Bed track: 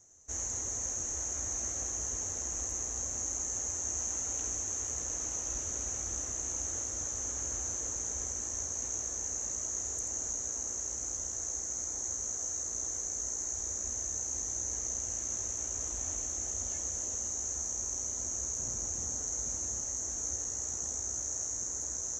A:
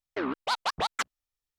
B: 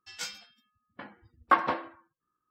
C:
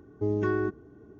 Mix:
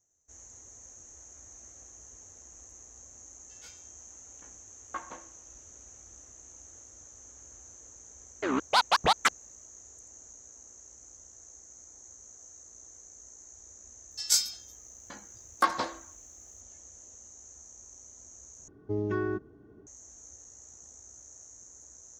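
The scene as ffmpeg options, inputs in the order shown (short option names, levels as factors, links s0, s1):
-filter_complex "[2:a]asplit=2[s0][s1];[0:a]volume=0.178[s2];[1:a]dynaudnorm=f=110:g=5:m=2.51[s3];[s1]aexciter=amount=6:drive=8.3:freq=4100[s4];[s2]asplit=2[s5][s6];[s5]atrim=end=18.684[s7];[3:a]atrim=end=1.19,asetpts=PTS-STARTPTS,volume=0.668[s8];[s6]atrim=start=19.866[s9];[s0]atrim=end=2.5,asetpts=PTS-STARTPTS,volume=0.15,afade=t=in:d=0.004:c=hsin,afade=t=out:st=2.496:d=0.004:c=hsin,adelay=3430[s10];[s3]atrim=end=1.58,asetpts=PTS-STARTPTS,volume=0.75,afade=t=in:d=0.004:c=hsin,afade=t=out:st=1.576:d=0.004:c=hsin,adelay=364266S[s11];[s4]atrim=end=2.5,asetpts=PTS-STARTPTS,volume=0.708,afade=t=in:d=0.004:c=hsin,afade=t=out:st=2.496:d=0.004:c=hsin,adelay=14110[s12];[s7][s8]acrossfade=d=0.004:c1=hsin:c2=hsin[s13];[s13][s9]acrossfade=d=0.004:c1=hsin:c2=hsin[s14];[s14][s10][s11][s12]amix=inputs=4:normalize=0"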